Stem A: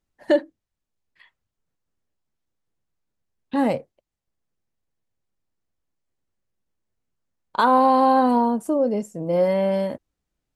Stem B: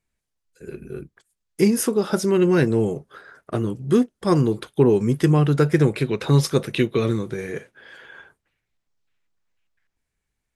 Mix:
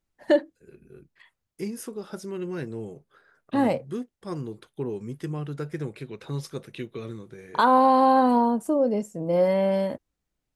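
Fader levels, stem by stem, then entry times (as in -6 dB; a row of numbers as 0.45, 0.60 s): -1.5, -15.0 dB; 0.00, 0.00 s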